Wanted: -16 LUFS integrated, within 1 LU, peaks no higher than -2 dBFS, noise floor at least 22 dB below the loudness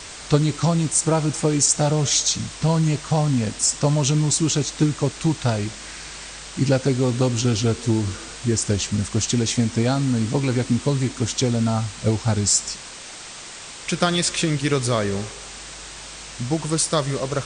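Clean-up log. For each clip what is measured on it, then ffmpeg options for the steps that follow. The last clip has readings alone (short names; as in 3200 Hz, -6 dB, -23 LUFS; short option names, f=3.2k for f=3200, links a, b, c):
noise floor -38 dBFS; noise floor target -43 dBFS; loudness -21.0 LUFS; peak -4.0 dBFS; loudness target -16.0 LUFS
-> -af "afftdn=nr=6:nf=-38"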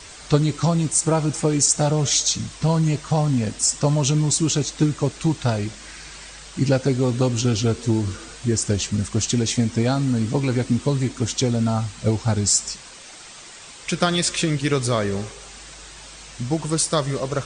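noise floor -42 dBFS; noise floor target -44 dBFS
-> -af "afftdn=nr=6:nf=-42"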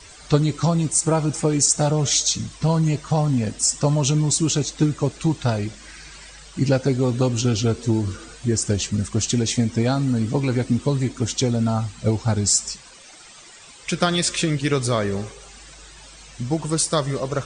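noise floor -45 dBFS; loudness -21.5 LUFS; peak -4.0 dBFS; loudness target -16.0 LUFS
-> -af "volume=5.5dB,alimiter=limit=-2dB:level=0:latency=1"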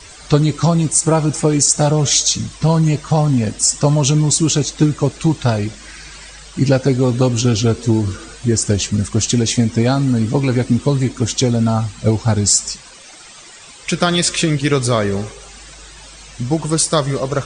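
loudness -16.0 LUFS; peak -2.0 dBFS; noise floor -39 dBFS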